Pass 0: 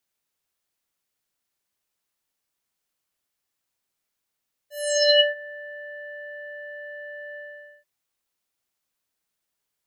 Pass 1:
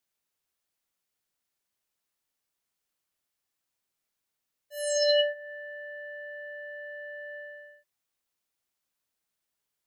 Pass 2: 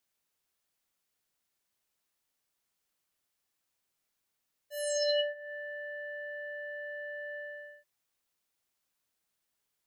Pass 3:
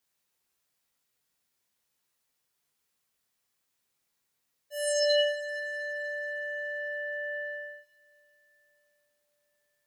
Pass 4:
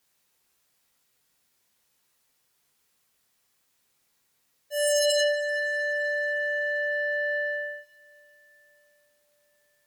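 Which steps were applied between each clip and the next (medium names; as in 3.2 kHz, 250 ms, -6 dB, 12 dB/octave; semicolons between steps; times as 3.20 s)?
dynamic bell 2.5 kHz, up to -7 dB, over -34 dBFS, Q 0.73; trim -3 dB
compression 1.5:1, threshold -42 dBFS, peak gain reduction 8 dB; trim +1.5 dB
reverberation, pre-delay 3 ms, DRR 0 dB
sine folder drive 8 dB, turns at -16 dBFS; trim -4 dB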